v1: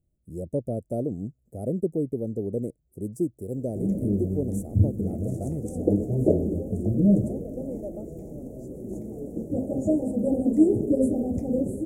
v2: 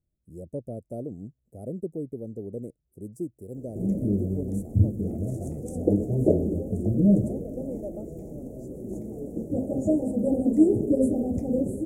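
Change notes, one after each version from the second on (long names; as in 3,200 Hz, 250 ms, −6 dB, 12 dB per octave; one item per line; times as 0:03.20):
speech −6.5 dB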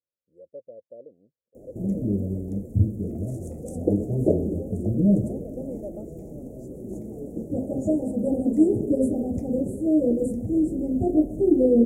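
speech: add formant filter e
background: entry −2.00 s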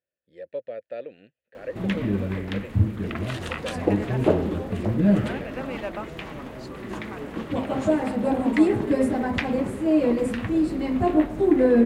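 speech +7.0 dB
master: remove inverse Chebyshev band-stop filter 1,000–4,400 Hz, stop band 40 dB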